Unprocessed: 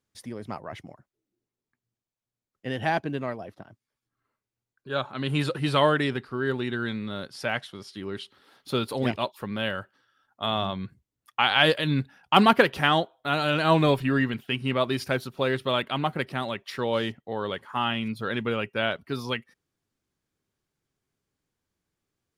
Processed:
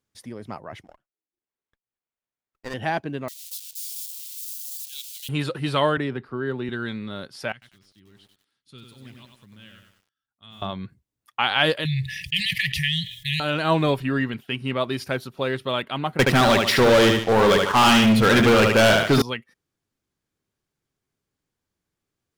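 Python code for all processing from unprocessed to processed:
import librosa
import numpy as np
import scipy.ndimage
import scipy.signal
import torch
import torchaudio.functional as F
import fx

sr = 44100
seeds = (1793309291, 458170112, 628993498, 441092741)

y = fx.chain(x, sr, fx.highpass(hz=940.0, slope=6),
    fx.transient(attack_db=7, sustain_db=-10),
    fx.running_max(window=9), at=(0.84, 2.74))
y = fx.chain(y, sr, fx.crossing_spikes(level_db=-25.0),
    fx.cheby2_highpass(hz=1200.0, order=4, stop_db=50), at=(3.28, 5.29))
y = fx.chain(y, sr, fx.high_shelf(hz=2600.0, db=-11.5),
    fx.band_squash(depth_pct=40), at=(5.97, 6.69))
y = fx.chain(y, sr, fx.tone_stack(knobs='6-0-2'),
    fx.resample_bad(factor=2, down='none', up='filtered'),
    fx.echo_crushed(ms=96, feedback_pct=55, bits=10, wet_db=-4), at=(7.52, 10.62))
y = fx.chain(y, sr, fx.brickwall_bandstop(low_hz=170.0, high_hz=1700.0),
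    fx.env_flatten(amount_pct=70), at=(11.85, 13.4))
y = fx.chain(y, sr, fx.echo_feedback(ms=73, feedback_pct=35, wet_db=-7.0),
    fx.leveller(passes=5), at=(16.19, 19.22))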